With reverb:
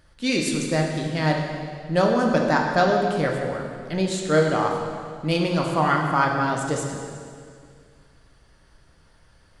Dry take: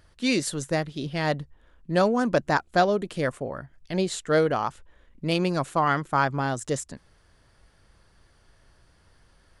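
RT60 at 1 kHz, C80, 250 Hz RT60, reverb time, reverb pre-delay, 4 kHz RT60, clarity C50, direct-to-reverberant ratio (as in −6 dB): 2.0 s, 4.0 dB, 2.3 s, 2.1 s, 3 ms, 2.0 s, 2.5 dB, 0.0 dB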